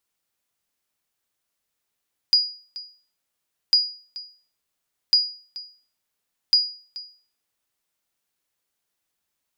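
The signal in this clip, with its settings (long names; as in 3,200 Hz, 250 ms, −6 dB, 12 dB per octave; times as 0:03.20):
ping with an echo 4,890 Hz, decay 0.42 s, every 1.40 s, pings 4, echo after 0.43 s, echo −18.5 dB −9.5 dBFS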